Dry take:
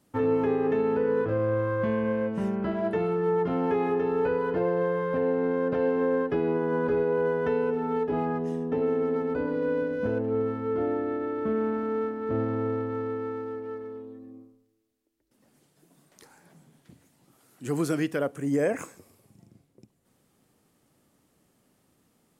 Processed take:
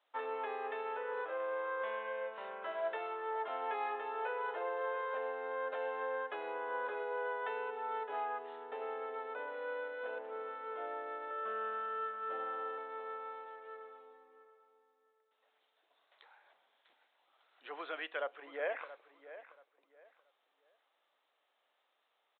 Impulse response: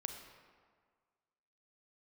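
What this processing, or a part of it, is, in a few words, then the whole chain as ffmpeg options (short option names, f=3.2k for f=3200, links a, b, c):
musical greeting card: -filter_complex "[0:a]asettb=1/sr,asplit=3[a][b][c];[a]atrim=end=11.304[d];[b]atrim=start=11.3:end=12.78,asetpts=PTS-STARTPTS,afade=t=in:d=0.004:c=qsin,afade=t=out:st=1.476:d=0.004:c=qsin,aecho=1:1:5.2:0.8,atrim=end_sample=65268[e];[c]atrim=start=12.776[f];[d][e]acrossfade=d=0.004:c1=hsin:c2=qsin[g];[g][f]acrossfade=d=0.004:c1=qsin:c2=hsin,aresample=8000,aresample=44100,highpass=f=630:w=0.5412,highpass=f=630:w=1.3066,equalizer=f=4k:t=o:w=0.41:g=8.5,asplit=2[h][i];[i]adelay=679,lowpass=f=3.5k:p=1,volume=-14dB,asplit=2[j][k];[k]adelay=679,lowpass=f=3.5k:p=1,volume=0.26,asplit=2[l][m];[m]adelay=679,lowpass=f=3.5k:p=1,volume=0.26[n];[h][j][l][n]amix=inputs=4:normalize=0,volume=-4.5dB"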